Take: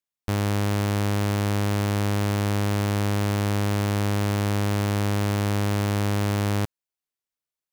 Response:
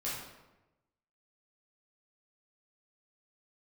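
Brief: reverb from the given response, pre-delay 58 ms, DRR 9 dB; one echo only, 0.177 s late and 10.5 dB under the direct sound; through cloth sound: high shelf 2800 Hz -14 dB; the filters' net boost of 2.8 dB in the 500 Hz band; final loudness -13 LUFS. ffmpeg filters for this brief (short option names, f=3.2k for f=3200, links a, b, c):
-filter_complex "[0:a]equalizer=f=500:t=o:g=4,aecho=1:1:177:0.299,asplit=2[a][b];[1:a]atrim=start_sample=2205,adelay=58[c];[b][c]afir=irnorm=-1:irlink=0,volume=-12.5dB[d];[a][d]amix=inputs=2:normalize=0,highshelf=f=2.8k:g=-14,volume=9.5dB"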